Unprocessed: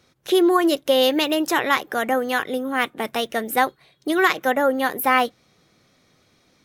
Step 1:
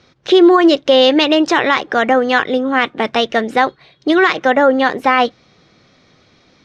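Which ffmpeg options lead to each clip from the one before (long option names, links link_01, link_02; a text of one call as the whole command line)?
ffmpeg -i in.wav -af "lowpass=frequency=5500:width=0.5412,lowpass=frequency=5500:width=1.3066,alimiter=level_in=10dB:limit=-1dB:release=50:level=0:latency=1,volume=-1dB" out.wav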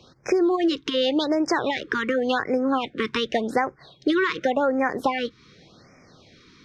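ffmpeg -i in.wav -filter_complex "[0:a]acrossover=split=100[link_01][link_02];[link_02]acompressor=threshold=-19dB:ratio=6[link_03];[link_01][link_03]amix=inputs=2:normalize=0,afftfilt=real='re*(1-between(b*sr/1024,650*pow(3600/650,0.5+0.5*sin(2*PI*0.88*pts/sr))/1.41,650*pow(3600/650,0.5+0.5*sin(2*PI*0.88*pts/sr))*1.41))':imag='im*(1-between(b*sr/1024,650*pow(3600/650,0.5+0.5*sin(2*PI*0.88*pts/sr))/1.41,650*pow(3600/650,0.5+0.5*sin(2*PI*0.88*pts/sr))*1.41))':win_size=1024:overlap=0.75" out.wav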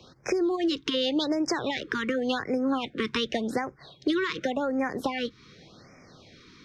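ffmpeg -i in.wav -filter_complex "[0:a]acrossover=split=260|3000[link_01][link_02][link_03];[link_02]acompressor=threshold=-30dB:ratio=3[link_04];[link_01][link_04][link_03]amix=inputs=3:normalize=0" out.wav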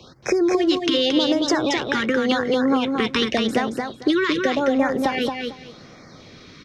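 ffmpeg -i in.wav -af "aecho=1:1:225|450|675:0.596|0.113|0.0215,volume=6.5dB" out.wav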